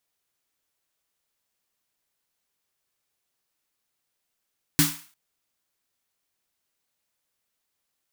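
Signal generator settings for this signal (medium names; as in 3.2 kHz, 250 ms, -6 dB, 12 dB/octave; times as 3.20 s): snare drum length 0.35 s, tones 160 Hz, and 290 Hz, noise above 930 Hz, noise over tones 0 dB, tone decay 0.28 s, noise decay 0.43 s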